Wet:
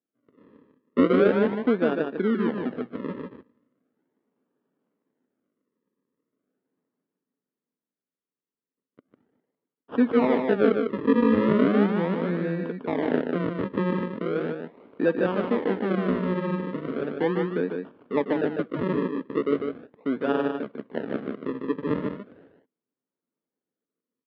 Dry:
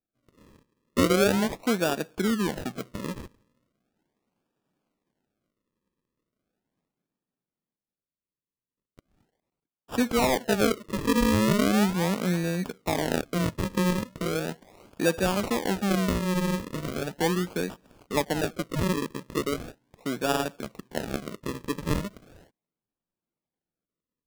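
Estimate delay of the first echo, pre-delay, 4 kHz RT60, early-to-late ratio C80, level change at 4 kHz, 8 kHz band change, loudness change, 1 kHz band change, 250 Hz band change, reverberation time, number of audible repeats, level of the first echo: 150 ms, no reverb audible, no reverb audible, no reverb audible, −10.5 dB, below −35 dB, +2.0 dB, −1.0 dB, +2.5 dB, no reverb audible, 1, −5.0 dB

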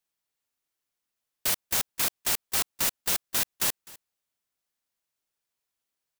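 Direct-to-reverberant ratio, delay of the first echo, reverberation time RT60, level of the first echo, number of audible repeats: no reverb audible, 255 ms, no reverb audible, −21.5 dB, 1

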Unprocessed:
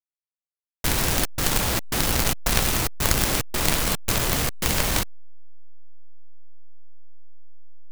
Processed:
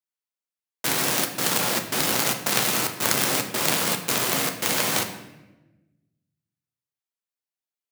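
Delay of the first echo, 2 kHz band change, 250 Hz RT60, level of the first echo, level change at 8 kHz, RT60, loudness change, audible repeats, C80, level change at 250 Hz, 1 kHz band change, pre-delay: no echo audible, +1.0 dB, 1.5 s, no echo audible, +1.0 dB, 1.1 s, +0.5 dB, no echo audible, 11.0 dB, −1.0 dB, +1.0 dB, 8 ms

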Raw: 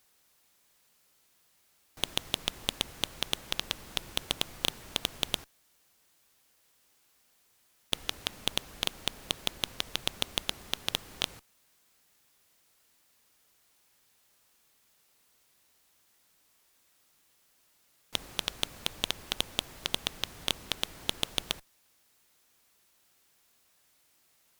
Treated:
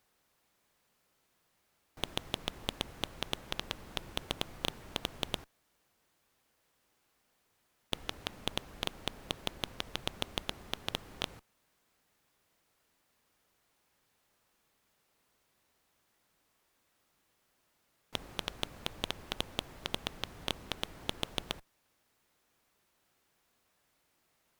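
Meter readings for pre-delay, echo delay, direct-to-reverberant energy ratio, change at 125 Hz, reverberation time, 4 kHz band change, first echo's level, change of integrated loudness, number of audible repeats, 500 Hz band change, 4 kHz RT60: no reverb audible, no echo audible, no reverb audible, 0.0 dB, no reverb audible, −6.5 dB, no echo audible, −5.5 dB, no echo audible, −0.5 dB, no reverb audible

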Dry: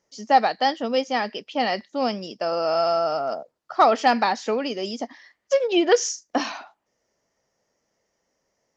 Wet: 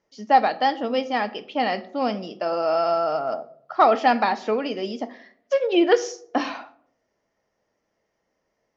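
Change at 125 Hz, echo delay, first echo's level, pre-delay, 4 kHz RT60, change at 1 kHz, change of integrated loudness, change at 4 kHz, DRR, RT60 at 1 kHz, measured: can't be measured, no echo audible, no echo audible, 3 ms, 0.35 s, +0.5 dB, 0.0 dB, −3.0 dB, 10.5 dB, 0.55 s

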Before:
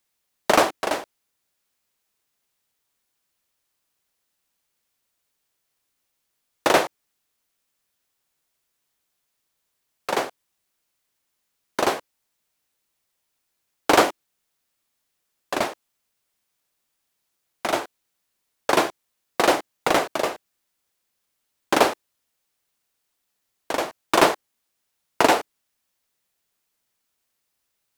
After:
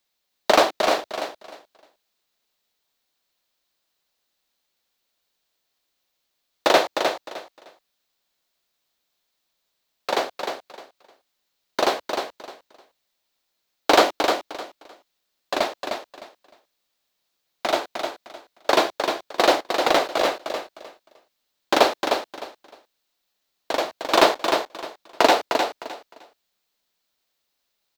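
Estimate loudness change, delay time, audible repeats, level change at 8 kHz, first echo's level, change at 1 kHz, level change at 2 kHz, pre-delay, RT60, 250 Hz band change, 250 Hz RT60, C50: +0.5 dB, 306 ms, 3, −1.5 dB, −6.0 dB, +1.5 dB, +0.5 dB, no reverb audible, no reverb audible, −0.5 dB, no reverb audible, no reverb audible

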